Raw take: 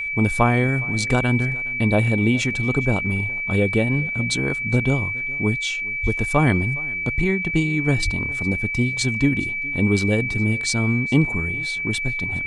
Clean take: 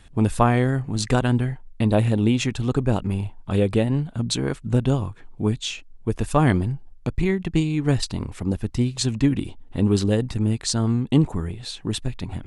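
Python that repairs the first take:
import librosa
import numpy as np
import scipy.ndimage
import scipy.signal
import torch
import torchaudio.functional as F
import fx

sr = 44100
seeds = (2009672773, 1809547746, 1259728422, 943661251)

y = fx.fix_declick_ar(x, sr, threshold=6.5)
y = fx.notch(y, sr, hz=2300.0, q=30.0)
y = fx.highpass(y, sr, hz=140.0, slope=24, at=(6.02, 6.14), fade=0.02)
y = fx.highpass(y, sr, hz=140.0, slope=24, at=(8.04, 8.16), fade=0.02)
y = fx.fix_echo_inverse(y, sr, delay_ms=414, level_db=-22.5)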